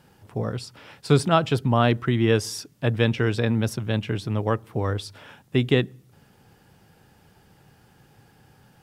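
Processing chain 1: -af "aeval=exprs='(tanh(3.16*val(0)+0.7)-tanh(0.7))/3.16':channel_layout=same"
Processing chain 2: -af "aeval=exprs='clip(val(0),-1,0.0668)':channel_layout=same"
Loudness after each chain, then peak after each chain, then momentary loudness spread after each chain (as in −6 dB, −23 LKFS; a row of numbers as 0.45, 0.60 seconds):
−29.5, −27.5 LKFS; −12.0, −11.0 dBFS; 11, 11 LU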